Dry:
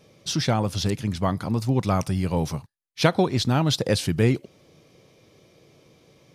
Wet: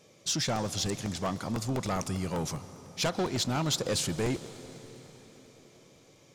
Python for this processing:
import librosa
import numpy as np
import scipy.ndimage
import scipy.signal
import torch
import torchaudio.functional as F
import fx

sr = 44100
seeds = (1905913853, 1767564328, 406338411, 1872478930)

y = fx.low_shelf(x, sr, hz=160.0, db=-8.5)
y = 10.0 ** (-21.5 / 20.0) * np.tanh(y / 10.0 ** (-21.5 / 20.0))
y = fx.peak_eq(y, sr, hz=7100.0, db=10.0, octaves=0.4)
y = fx.rev_plate(y, sr, seeds[0], rt60_s=4.8, hf_ratio=0.85, predelay_ms=115, drr_db=14.0)
y = fx.buffer_crackle(y, sr, first_s=0.46, period_s=0.1, block=64, kind='repeat')
y = F.gain(torch.from_numpy(y), -2.5).numpy()